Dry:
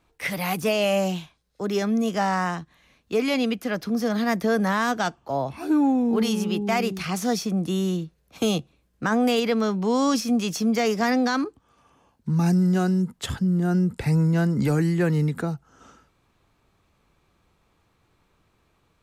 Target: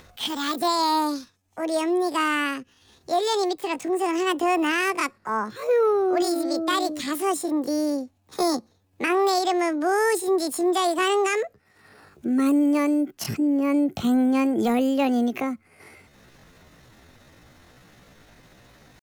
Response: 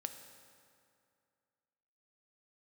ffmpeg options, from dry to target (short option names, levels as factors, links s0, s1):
-af "asetrate=70004,aresample=44100,atempo=0.629961,acompressor=mode=upward:threshold=0.0112:ratio=2.5"